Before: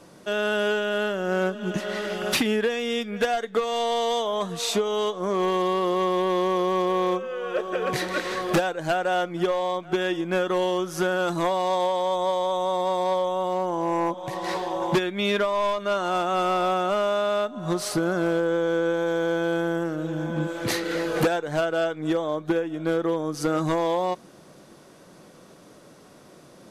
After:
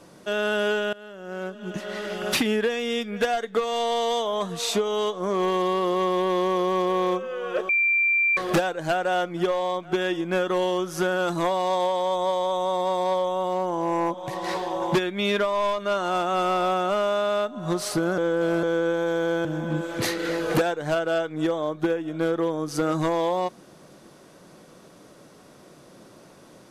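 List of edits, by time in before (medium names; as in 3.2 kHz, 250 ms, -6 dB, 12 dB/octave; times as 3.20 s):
0.93–2.40 s: fade in, from -22.5 dB
7.69–8.37 s: bleep 2.36 kHz -18 dBFS
18.18–18.63 s: reverse
19.45–20.11 s: delete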